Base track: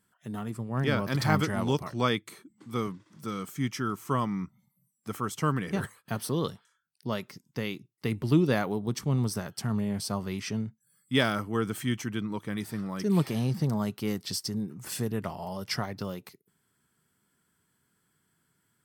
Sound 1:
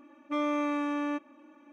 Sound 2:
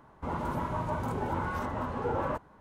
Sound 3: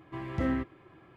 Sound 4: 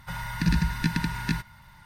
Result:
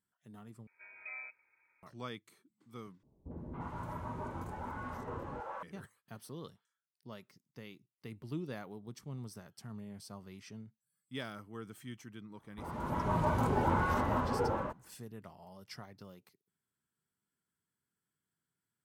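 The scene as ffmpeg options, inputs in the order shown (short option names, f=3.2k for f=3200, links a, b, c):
-filter_complex "[2:a]asplit=2[a][b];[0:a]volume=-17dB[c];[3:a]lowpass=f=2.2k:t=q:w=0.5098,lowpass=f=2.2k:t=q:w=0.6013,lowpass=f=2.2k:t=q:w=0.9,lowpass=f=2.2k:t=q:w=2.563,afreqshift=-2600[d];[a]acrossover=split=520|3500[e][f][g];[f]adelay=280[h];[g]adelay=350[i];[e][h][i]amix=inputs=3:normalize=0[j];[b]dynaudnorm=f=110:g=11:m=15dB[k];[c]asplit=3[l][m][n];[l]atrim=end=0.674[o];[d]atrim=end=1.16,asetpts=PTS-STARTPTS,volume=-17dB[p];[m]atrim=start=1.826:end=3.034[q];[j]atrim=end=2.6,asetpts=PTS-STARTPTS,volume=-8.5dB[r];[n]atrim=start=5.626[s];[k]atrim=end=2.6,asetpts=PTS-STARTPTS,volume=-12.5dB,afade=t=in:d=0.004:c=hsin,afade=t=out:st=2.596:d=0.004:c=hsin,adelay=12350[t];[o][p]acrossfade=d=0.004:c1=hsin:c2=hsin[u];[u][q]acrossfade=d=0.004:c1=hsin:c2=hsin[v];[v][r]acrossfade=d=0.004:c1=hsin:c2=hsin[w];[w][s]acrossfade=d=0.004:c1=hsin:c2=hsin[x];[x][t]amix=inputs=2:normalize=0"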